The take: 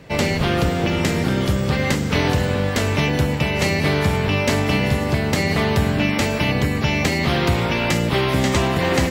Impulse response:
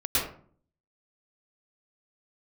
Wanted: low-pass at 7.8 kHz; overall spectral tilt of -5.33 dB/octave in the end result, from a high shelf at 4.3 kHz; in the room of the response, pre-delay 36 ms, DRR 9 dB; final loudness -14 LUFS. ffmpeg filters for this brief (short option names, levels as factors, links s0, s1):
-filter_complex "[0:a]lowpass=7800,highshelf=f=4300:g=-7,asplit=2[s0][s1];[1:a]atrim=start_sample=2205,adelay=36[s2];[s1][s2]afir=irnorm=-1:irlink=0,volume=0.1[s3];[s0][s3]amix=inputs=2:normalize=0,volume=1.78"